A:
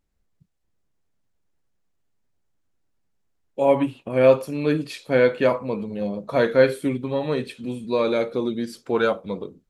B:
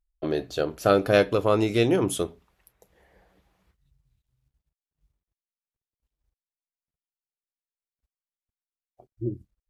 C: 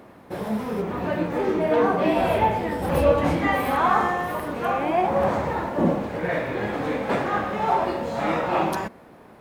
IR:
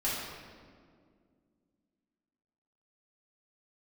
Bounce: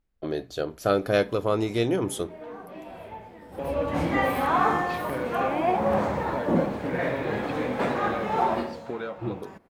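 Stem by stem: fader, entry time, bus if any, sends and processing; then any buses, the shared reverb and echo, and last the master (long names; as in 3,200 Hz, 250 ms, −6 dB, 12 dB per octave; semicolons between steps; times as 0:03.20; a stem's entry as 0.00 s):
−3.0 dB, 0.00 s, no send, low-pass filter 3,900 Hz; downward compressor, threshold −28 dBFS, peak gain reduction 17 dB
−3.0 dB, 0.00 s, no send, notch filter 2,700 Hz, Q 14
−2.5 dB, 0.70 s, no send, automatic ducking −18 dB, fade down 0.40 s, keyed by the second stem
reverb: not used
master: no processing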